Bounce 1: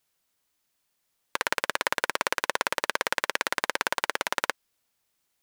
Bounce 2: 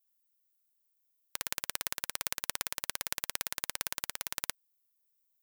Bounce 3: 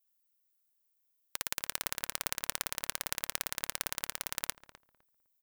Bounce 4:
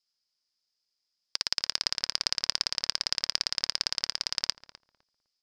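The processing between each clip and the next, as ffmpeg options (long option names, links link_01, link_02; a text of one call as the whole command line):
ffmpeg -i in.wav -af "aemphasis=mode=production:type=riaa,aeval=exprs='2.51*(cos(1*acos(clip(val(0)/2.51,-1,1)))-cos(1*PI/2))+0.631*(cos(2*acos(clip(val(0)/2.51,-1,1)))-cos(2*PI/2))+0.631*(cos(3*acos(clip(val(0)/2.51,-1,1)))-cos(3*PI/2))+0.0562*(cos(5*acos(clip(val(0)/2.51,-1,1)))-cos(5*PI/2))':channel_layout=same,volume=-13dB" out.wav
ffmpeg -i in.wav -filter_complex "[0:a]asplit=2[link_01][link_02];[link_02]adelay=254,lowpass=frequency=1300:poles=1,volume=-12.5dB,asplit=2[link_03][link_04];[link_04]adelay=254,lowpass=frequency=1300:poles=1,volume=0.23,asplit=2[link_05][link_06];[link_06]adelay=254,lowpass=frequency=1300:poles=1,volume=0.23[link_07];[link_01][link_03][link_05][link_07]amix=inputs=4:normalize=0" out.wav
ffmpeg -i in.wav -af "lowpass=frequency=5000:width_type=q:width=11" out.wav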